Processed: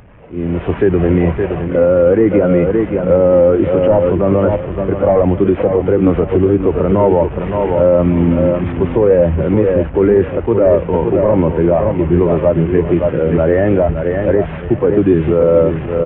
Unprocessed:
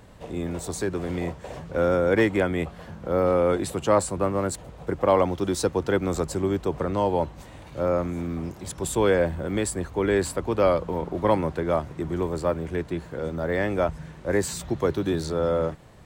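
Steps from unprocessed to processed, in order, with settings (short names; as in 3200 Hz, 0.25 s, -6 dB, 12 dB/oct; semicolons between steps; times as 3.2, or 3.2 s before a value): delta modulation 16 kbps, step -31.5 dBFS; AGC gain up to 13 dB; on a send: feedback echo 0.567 s, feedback 35%, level -7 dB; on the sum: maximiser +7.5 dB; spectral expander 1.5:1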